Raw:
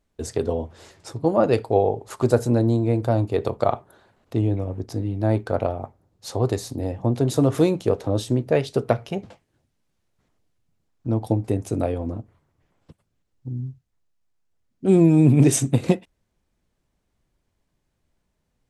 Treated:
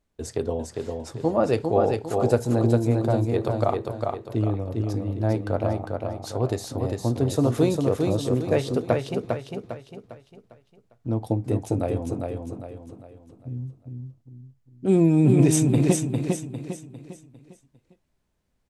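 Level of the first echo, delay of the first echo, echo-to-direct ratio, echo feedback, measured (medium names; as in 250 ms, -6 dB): -4.0 dB, 402 ms, -3.0 dB, 40%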